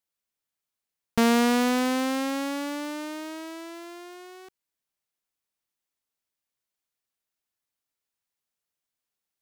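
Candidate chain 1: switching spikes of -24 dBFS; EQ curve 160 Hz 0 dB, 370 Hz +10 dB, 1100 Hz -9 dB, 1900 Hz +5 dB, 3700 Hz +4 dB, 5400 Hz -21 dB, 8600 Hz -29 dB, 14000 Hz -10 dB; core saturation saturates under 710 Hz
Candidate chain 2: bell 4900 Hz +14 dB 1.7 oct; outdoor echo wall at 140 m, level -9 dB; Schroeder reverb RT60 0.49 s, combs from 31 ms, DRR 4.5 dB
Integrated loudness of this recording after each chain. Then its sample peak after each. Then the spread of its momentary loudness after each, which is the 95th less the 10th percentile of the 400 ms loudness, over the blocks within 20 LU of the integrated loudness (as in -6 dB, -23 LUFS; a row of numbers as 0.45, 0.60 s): -29.0, -21.5 LUFS; -8.0, -2.0 dBFS; 14, 20 LU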